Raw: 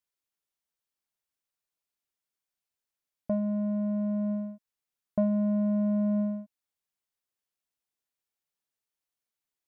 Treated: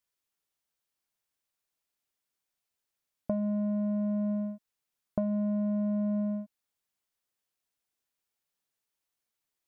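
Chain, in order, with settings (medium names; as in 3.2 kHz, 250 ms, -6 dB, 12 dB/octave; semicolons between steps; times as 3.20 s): compression, threshold -30 dBFS, peak gain reduction 8.5 dB; trim +3 dB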